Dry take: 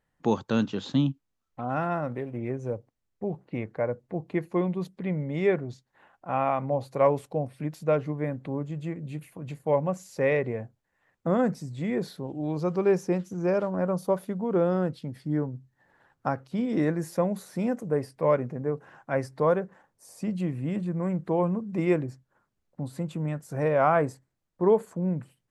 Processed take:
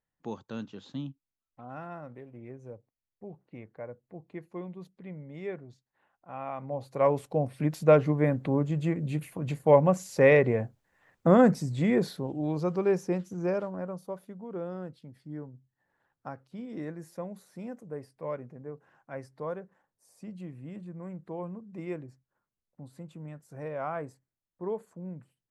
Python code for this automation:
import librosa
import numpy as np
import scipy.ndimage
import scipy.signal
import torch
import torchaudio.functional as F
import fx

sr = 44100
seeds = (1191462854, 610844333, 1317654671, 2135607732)

y = fx.gain(x, sr, db=fx.line((6.36, -13.0), (7.11, -1.5), (7.74, 5.0), (11.76, 5.0), (12.86, -3.0), (13.45, -3.0), (14.06, -12.5)))